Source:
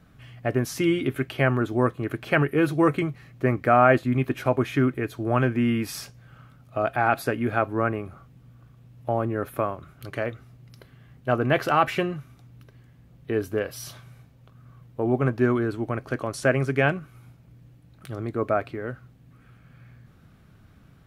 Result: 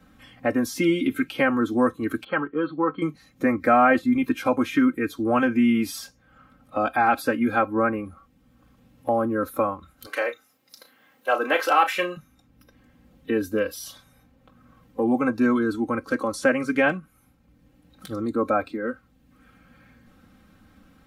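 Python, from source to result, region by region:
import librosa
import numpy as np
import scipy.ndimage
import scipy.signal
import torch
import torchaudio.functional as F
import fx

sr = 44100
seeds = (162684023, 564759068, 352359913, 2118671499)

y = fx.chain(x, sr, fx.cheby_ripple(hz=4500.0, ripple_db=9),
    fx.high_shelf(hz=2600.0, db=-11.0), at=(2.24, 3.02))
y = fx.chain(y, sr, fx.highpass(hz=450.0, slope=12),
    fx.high_shelf(hz=3100.0, db=5.5),
    fx.doubler(ms=34.0, db=-9.5), at=(10.06, 12.17))
y = fx.noise_reduce_blind(y, sr, reduce_db=12)
y = y + 0.93 * np.pad(y, (int(3.8 * sr / 1000.0), 0))[:len(y)]
y = fx.band_squash(y, sr, depth_pct=40)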